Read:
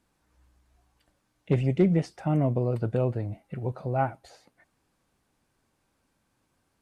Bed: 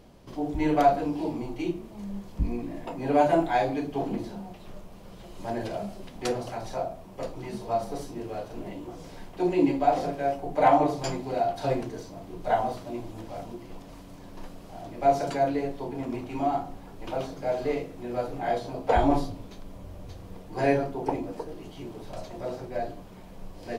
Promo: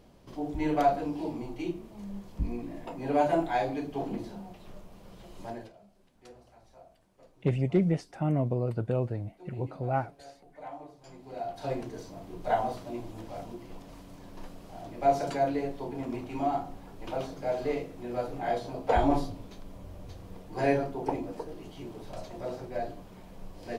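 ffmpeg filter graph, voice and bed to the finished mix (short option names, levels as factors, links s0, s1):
-filter_complex "[0:a]adelay=5950,volume=0.708[s0];[1:a]volume=7.08,afade=t=out:st=5.39:d=0.34:silence=0.105925,afade=t=in:st=11.05:d=1.05:silence=0.0891251[s1];[s0][s1]amix=inputs=2:normalize=0"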